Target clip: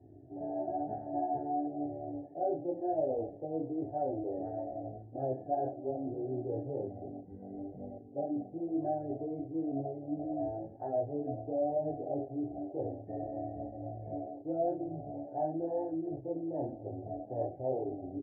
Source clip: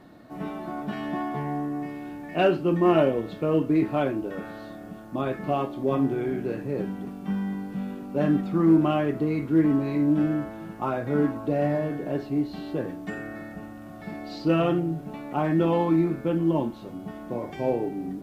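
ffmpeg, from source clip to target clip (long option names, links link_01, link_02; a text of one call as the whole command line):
ffmpeg -i in.wav -filter_complex "[0:a]asplit=2[link_01][link_02];[link_02]adelay=38,volume=-11.5dB[link_03];[link_01][link_03]amix=inputs=2:normalize=0,areverse,acompressor=threshold=-33dB:ratio=5,areverse,equalizer=frequency=110:width=1.1:gain=11.5,aecho=1:1:77|154:0.126|0.0327,flanger=delay=19:depth=5.9:speed=1,afwtdn=0.0112,adynamicsmooth=sensitivity=3.5:basefreq=4200,firequalizer=gain_entry='entry(110,0);entry(190,-19);entry(280,1);entry(740,14);entry(1100,-28);entry(1700,-8);entry(2600,-24);entry(4400,-29);entry(6800,-16)':delay=0.05:min_phase=1,volume=-2.5dB" -ar 44100 -c:a libvorbis -b:a 32k out.ogg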